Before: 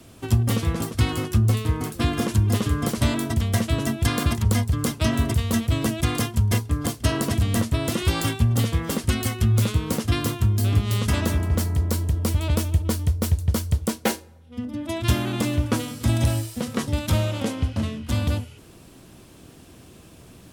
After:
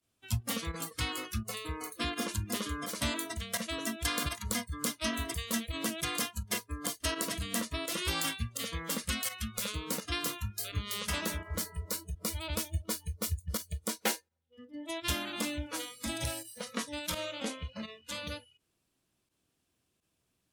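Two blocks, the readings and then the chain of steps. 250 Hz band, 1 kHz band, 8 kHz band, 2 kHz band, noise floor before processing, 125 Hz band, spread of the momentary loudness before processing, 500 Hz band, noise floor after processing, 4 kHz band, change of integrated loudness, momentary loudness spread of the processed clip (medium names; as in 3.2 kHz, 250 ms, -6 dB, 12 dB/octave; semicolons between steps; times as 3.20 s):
-14.0 dB, -8.5 dB, -4.0 dB, -5.5 dB, -48 dBFS, -19.5 dB, 5 LU, -11.0 dB, -80 dBFS, -4.0 dB, -11.5 dB, 6 LU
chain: volume shaper 84 bpm, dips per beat 1, -12 dB, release 60 ms; spectral noise reduction 23 dB; tilt shelf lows -4.5 dB; trim -7.5 dB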